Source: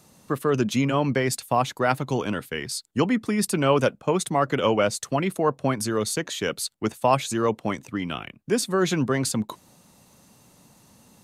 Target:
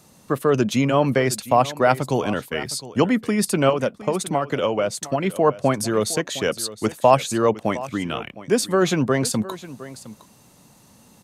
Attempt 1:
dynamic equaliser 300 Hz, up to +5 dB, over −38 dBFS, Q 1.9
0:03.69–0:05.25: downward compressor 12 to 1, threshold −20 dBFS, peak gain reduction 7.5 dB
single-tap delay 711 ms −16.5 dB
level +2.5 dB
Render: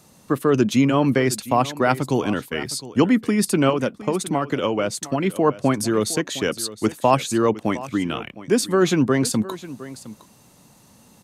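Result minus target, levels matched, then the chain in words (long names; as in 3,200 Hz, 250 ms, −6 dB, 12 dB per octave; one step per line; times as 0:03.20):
250 Hz band +2.5 dB
dynamic equaliser 610 Hz, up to +5 dB, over −38 dBFS, Q 1.9
0:03.69–0:05.25: downward compressor 12 to 1, threshold −20 dBFS, peak gain reduction 9 dB
single-tap delay 711 ms −16.5 dB
level +2.5 dB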